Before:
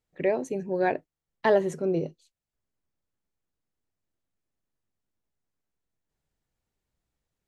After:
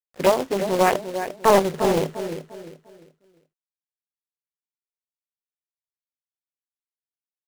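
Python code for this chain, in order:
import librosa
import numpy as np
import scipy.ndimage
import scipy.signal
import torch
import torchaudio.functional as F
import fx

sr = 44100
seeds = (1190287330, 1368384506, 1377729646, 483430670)

y = fx.filter_lfo_lowpass(x, sr, shape='saw_up', hz=7.6, low_hz=550.0, high_hz=2300.0, q=2.1)
y = fx.quant_companded(y, sr, bits=4)
y = fx.echo_feedback(y, sr, ms=349, feedback_pct=32, wet_db=-10)
y = fx.doppler_dist(y, sr, depth_ms=0.58)
y = y * 10.0 ** (4.0 / 20.0)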